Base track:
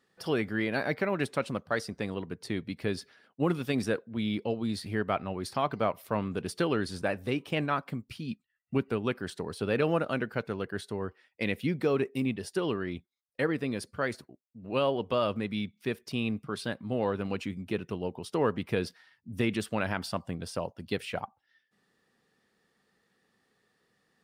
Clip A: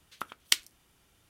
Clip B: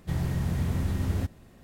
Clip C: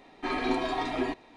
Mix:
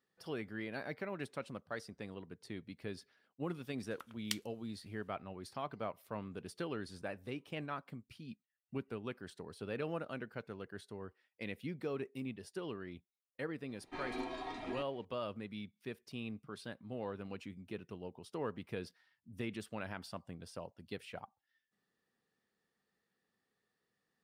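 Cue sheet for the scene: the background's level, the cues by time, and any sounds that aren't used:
base track -12.5 dB
3.79 s: add A -14 dB
13.69 s: add C -13 dB
not used: B

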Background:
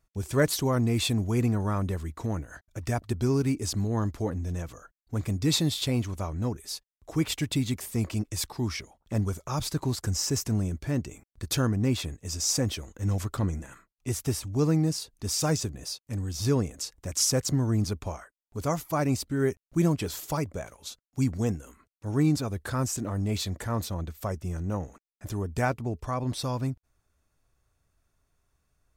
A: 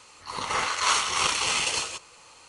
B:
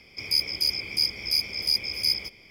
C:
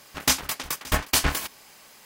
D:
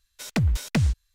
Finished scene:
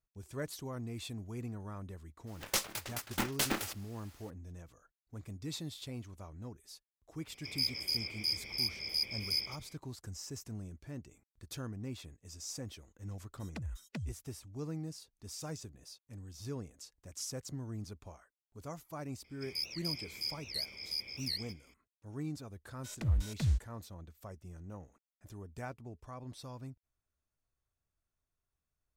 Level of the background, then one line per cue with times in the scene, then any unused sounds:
background -16.5 dB
2.26 s: add C -11 dB, fades 0.02 s + polarity switched at an audio rate 270 Hz
7.27 s: add B -9.5 dB
13.20 s: add D -16 dB + expander on every frequency bin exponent 3
19.24 s: add B -14 dB + warped record 78 rpm, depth 250 cents
22.65 s: add D -6.5 dB + harmonic-percussive split percussive -12 dB
not used: A

